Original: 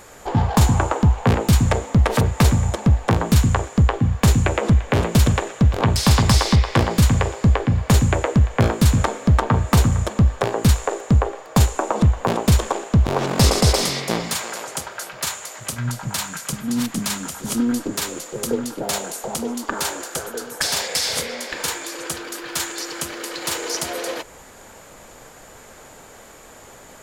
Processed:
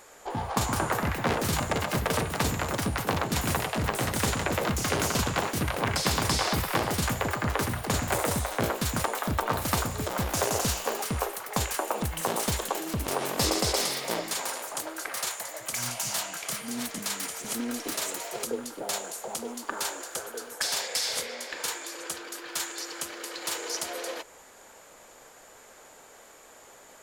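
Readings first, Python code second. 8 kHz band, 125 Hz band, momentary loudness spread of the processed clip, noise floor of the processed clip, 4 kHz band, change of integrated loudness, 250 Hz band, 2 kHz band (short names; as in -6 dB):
-4.5 dB, -16.0 dB, 8 LU, -52 dBFS, -5.5 dB, -9.0 dB, -12.0 dB, -4.5 dB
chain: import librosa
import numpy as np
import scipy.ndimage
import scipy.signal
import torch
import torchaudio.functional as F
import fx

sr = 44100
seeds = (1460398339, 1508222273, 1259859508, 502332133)

y = fx.bass_treble(x, sr, bass_db=-11, treble_db=1)
y = fx.echo_pitch(y, sr, ms=302, semitones=5, count=3, db_per_echo=-3.0)
y = F.gain(torch.from_numpy(y), -7.5).numpy()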